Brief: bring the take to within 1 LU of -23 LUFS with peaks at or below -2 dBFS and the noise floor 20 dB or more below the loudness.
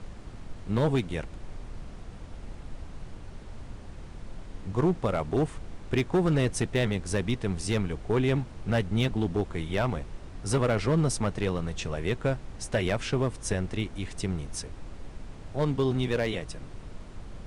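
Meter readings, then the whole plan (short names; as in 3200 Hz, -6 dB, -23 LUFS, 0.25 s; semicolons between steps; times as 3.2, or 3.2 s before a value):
clipped 0.7%; flat tops at -18.5 dBFS; noise floor -44 dBFS; noise floor target -49 dBFS; loudness -29.0 LUFS; peak -18.5 dBFS; loudness target -23.0 LUFS
-> clip repair -18.5 dBFS; noise print and reduce 6 dB; gain +6 dB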